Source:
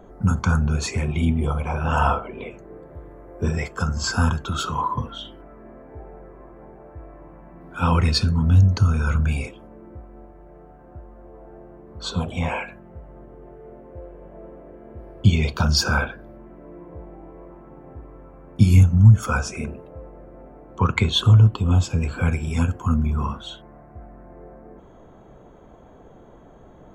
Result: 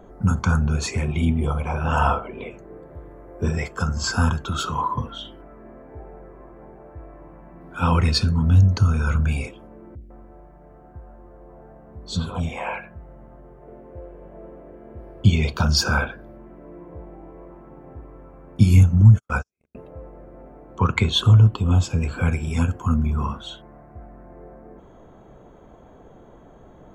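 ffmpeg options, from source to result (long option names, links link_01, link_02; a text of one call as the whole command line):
ffmpeg -i in.wav -filter_complex "[0:a]asettb=1/sr,asplit=3[link_01][link_02][link_03];[link_01]atrim=end=9.954[link_04];[link_02]atrim=start=9.95:end=13.68,asetpts=PTS-STARTPTS,afade=type=in:duration=0.004:curve=qsin,afade=type=out:start_time=3.726:duration=0.004:curve=qsin,acrossover=split=370|3000[link_05][link_06][link_07];[link_07]adelay=60[link_08];[link_06]adelay=150[link_09];[link_05][link_09][link_08]amix=inputs=3:normalize=0,atrim=end_sample=164493[link_10];[link_03]atrim=start=13.676[link_11];[link_04][link_10]acrossfade=duration=0.004:curve1=hsin:curve2=qsin[link_12];[link_12][link_11]acrossfade=duration=0.004:curve1=qsin:curve2=hsin,asettb=1/sr,asplit=3[link_13][link_14][link_15];[link_13]atrim=end=19.014[link_16];[link_14]atrim=start=19.01:end=19.75,asetpts=PTS-STARTPTS,afade=type=in:duration=0.004:curve=qsin,afade=type=out:start_time=0.736:duration=0.004:curve=qsin,agate=range=-57dB:threshold=-22dB:ratio=16:release=100:detection=peak[link_17];[link_15]atrim=start=19.746[link_18];[link_16][link_17]acrossfade=duration=0.004:curve1=hsin:curve2=qsin[link_19];[link_19][link_18]acrossfade=duration=0.004:curve1=qsin:curve2=hsin" out.wav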